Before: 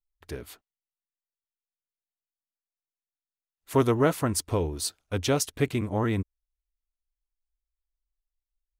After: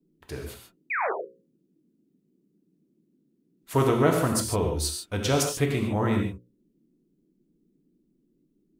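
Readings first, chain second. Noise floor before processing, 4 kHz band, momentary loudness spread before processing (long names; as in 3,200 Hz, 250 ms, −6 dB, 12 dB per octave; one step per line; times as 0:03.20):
below −85 dBFS, +2.5 dB, 17 LU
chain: sound drawn into the spectrogram fall, 0:00.90–0:01.12, 350–2,600 Hz −28 dBFS
mains-hum notches 60/120/180/240/300/360/420/480/540 Hz
reverb whose tail is shaped and stops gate 170 ms flat, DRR 1.5 dB
noise in a band 150–360 Hz −68 dBFS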